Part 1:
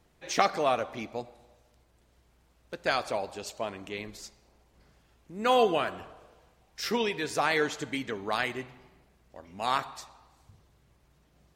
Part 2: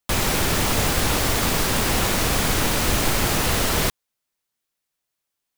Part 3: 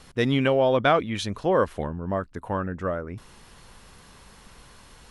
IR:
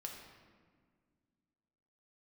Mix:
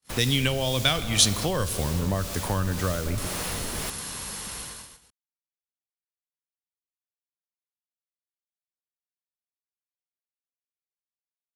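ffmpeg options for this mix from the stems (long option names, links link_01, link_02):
-filter_complex "[1:a]acrossover=split=470[link_01][link_02];[link_01]aeval=exprs='val(0)*(1-0.5/2+0.5/2*cos(2*PI*1.9*n/s))':channel_layout=same[link_03];[link_02]aeval=exprs='val(0)*(1-0.5/2-0.5/2*cos(2*PI*1.9*n/s))':channel_layout=same[link_04];[link_03][link_04]amix=inputs=2:normalize=0,volume=-10dB[link_05];[2:a]highpass=42,aemphasis=mode=production:type=75kf,dynaudnorm=framelen=120:gausssize=9:maxgain=4.5dB,volume=2.5dB,asplit=2[link_06][link_07];[link_07]volume=-4dB[link_08];[3:a]atrim=start_sample=2205[link_09];[link_08][link_09]afir=irnorm=-1:irlink=0[link_10];[link_05][link_06][link_10]amix=inputs=3:normalize=0,agate=range=-46dB:threshold=-37dB:ratio=16:detection=peak,acrossover=split=130|3000[link_11][link_12][link_13];[link_12]acompressor=threshold=-28dB:ratio=6[link_14];[link_11][link_14][link_13]amix=inputs=3:normalize=0"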